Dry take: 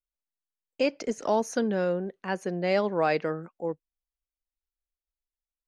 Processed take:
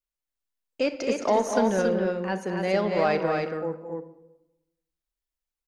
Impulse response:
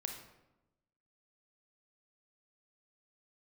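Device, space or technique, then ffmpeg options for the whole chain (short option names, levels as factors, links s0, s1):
saturated reverb return: -filter_complex "[0:a]asettb=1/sr,asplit=3[s0][s1][s2];[s0]atrim=end=0.994[s3];[s1]atrim=start=0.99:end=1.82,asetpts=PTS-STARTPTS,afade=t=in:d=0.004:c=qsin,afade=t=out:st=0.826:d=0.004:c=qsin,equalizer=f=1100:w=0.32:g=3.5[s4];[s2]atrim=start=1.816[s5];[s3][s4]acrossfade=d=0.004:c1=hsin:c2=qsin[s6];[s6][s5]acrossfade=d=0.004:c1=qsin:c2=hsin,asplit=2[s7][s8];[1:a]atrim=start_sample=2205[s9];[s8][s9]afir=irnorm=-1:irlink=0,asoftclip=type=tanh:threshold=0.0841,volume=0.841[s10];[s7][s10]amix=inputs=2:normalize=0,aecho=1:1:215.7|277:0.355|0.631,volume=0.668"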